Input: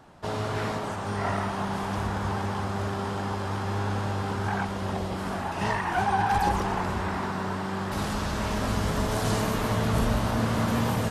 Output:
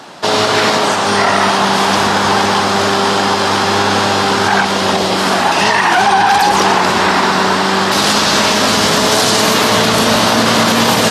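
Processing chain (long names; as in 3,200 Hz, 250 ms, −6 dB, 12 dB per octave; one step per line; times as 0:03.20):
high-pass filter 240 Hz 12 dB per octave
parametric band 4,500 Hz +10 dB 1.8 octaves
boost into a limiter +19.5 dB
level −1 dB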